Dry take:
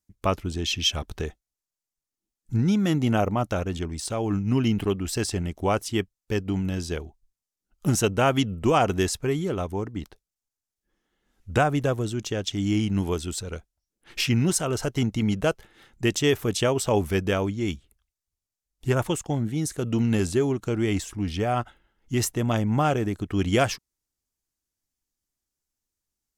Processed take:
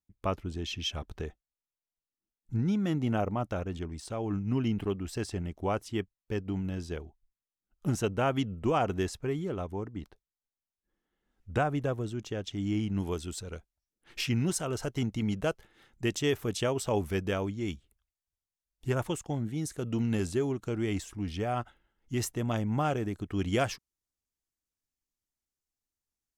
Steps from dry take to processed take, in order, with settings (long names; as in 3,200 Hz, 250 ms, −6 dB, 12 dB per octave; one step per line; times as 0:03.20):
high-shelf EQ 3,500 Hz −8.5 dB, from 0:13.00 −2 dB
level −6.5 dB